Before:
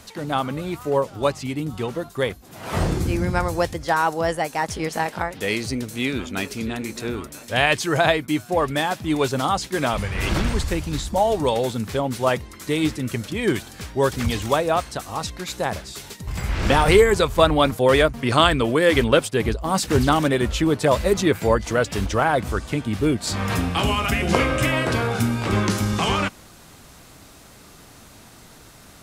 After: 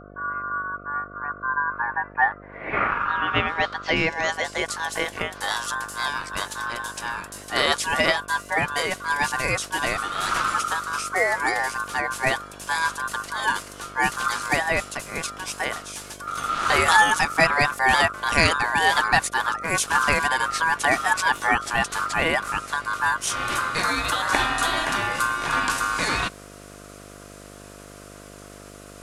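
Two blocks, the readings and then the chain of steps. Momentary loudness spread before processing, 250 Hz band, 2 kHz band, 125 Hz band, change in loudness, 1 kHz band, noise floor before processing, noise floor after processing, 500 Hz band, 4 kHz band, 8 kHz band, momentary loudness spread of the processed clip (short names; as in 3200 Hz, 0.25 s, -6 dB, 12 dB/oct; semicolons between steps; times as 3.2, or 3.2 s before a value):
11 LU, -11.5 dB, +5.0 dB, -12.0 dB, -1.5 dB, +1.5 dB, -47 dBFS, -43 dBFS, -9.0 dB, -0.5 dB, +2.0 dB, 13 LU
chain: low-pass sweep 150 Hz -> 9300 Hz, 1.05–4.82; ring modulator 1300 Hz; buzz 50 Hz, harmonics 14, -45 dBFS -1 dB/oct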